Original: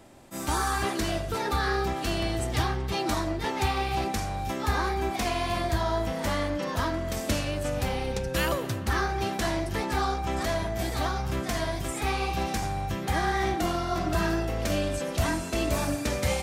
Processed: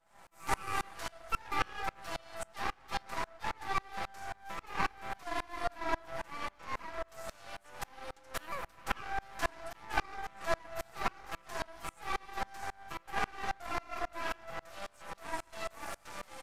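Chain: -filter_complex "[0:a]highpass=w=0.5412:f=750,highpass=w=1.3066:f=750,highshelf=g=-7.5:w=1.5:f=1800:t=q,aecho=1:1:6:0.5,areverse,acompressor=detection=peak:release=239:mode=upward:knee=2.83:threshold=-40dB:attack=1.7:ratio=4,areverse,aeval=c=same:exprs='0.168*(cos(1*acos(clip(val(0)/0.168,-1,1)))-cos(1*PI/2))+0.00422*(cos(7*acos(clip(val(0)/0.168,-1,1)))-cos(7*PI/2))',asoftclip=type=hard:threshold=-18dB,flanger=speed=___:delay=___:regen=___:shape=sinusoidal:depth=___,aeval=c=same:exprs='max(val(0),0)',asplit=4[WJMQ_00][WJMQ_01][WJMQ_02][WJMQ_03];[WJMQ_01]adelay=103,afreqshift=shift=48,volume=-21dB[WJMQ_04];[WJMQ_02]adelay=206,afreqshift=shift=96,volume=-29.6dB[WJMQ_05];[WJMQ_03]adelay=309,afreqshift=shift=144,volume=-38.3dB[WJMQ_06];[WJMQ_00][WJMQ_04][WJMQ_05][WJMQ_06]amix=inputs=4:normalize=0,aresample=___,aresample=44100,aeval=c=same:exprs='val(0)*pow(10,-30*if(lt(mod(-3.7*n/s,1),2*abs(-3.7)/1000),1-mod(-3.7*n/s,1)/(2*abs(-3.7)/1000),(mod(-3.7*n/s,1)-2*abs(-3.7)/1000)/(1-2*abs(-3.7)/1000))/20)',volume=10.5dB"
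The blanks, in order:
0.6, 4.6, 59, 4.3, 32000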